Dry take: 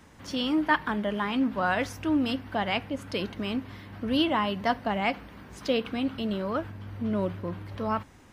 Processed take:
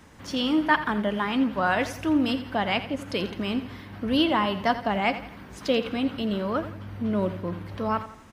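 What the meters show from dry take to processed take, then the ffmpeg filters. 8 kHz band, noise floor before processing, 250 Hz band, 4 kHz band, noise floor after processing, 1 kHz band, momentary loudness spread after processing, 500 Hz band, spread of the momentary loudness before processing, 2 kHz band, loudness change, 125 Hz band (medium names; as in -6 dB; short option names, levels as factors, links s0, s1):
no reading, -53 dBFS, +2.5 dB, +2.5 dB, -45 dBFS, +3.0 dB, 10 LU, +2.5 dB, 9 LU, +2.5 dB, +2.5 dB, +2.0 dB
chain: -af "aecho=1:1:85|170|255|340:0.224|0.094|0.0395|0.0166,volume=1.33"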